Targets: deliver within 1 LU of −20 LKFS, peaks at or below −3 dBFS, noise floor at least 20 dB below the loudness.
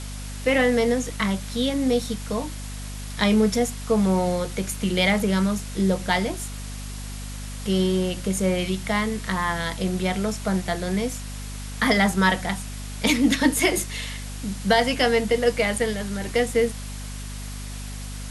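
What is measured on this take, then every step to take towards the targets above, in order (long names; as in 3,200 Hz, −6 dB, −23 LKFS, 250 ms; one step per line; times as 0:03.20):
mains hum 50 Hz; hum harmonics up to 250 Hz; level of the hum −32 dBFS; background noise floor −34 dBFS; target noise floor −44 dBFS; integrated loudness −23.5 LKFS; sample peak −4.5 dBFS; target loudness −20.0 LKFS
→ mains-hum notches 50/100/150/200/250 Hz
broadband denoise 10 dB, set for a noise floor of −34 dBFS
level +3.5 dB
brickwall limiter −3 dBFS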